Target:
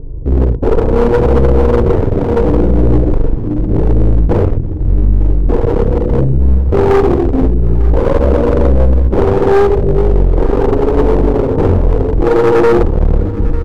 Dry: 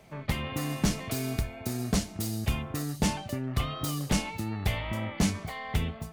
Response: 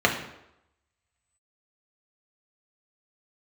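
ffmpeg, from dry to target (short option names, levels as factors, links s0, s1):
-filter_complex "[0:a]afwtdn=0.0112,lowshelf=f=170:g=11,asplit=2[s0][s1];[s1]acompressor=threshold=0.0112:ratio=6,volume=0.794[s2];[s0][s2]amix=inputs=2:normalize=0,aeval=exprs='val(0)+0.00447*(sin(2*PI*60*n/s)+sin(2*PI*2*60*n/s)/2+sin(2*PI*3*60*n/s)/3+sin(2*PI*4*60*n/s)/4+sin(2*PI*5*60*n/s)/5)':c=same,apsyclip=28.2,lowpass=f=1000:t=q:w=5.7,flanger=delay=19:depth=6.5:speed=1.3,asetrate=19801,aresample=44100,aeval=exprs='clip(val(0),-1,0.299)':c=same,asplit=2[s3][s4];[s4]aecho=0:1:898:0.133[s5];[s3][s5]amix=inputs=2:normalize=0,volume=0.75"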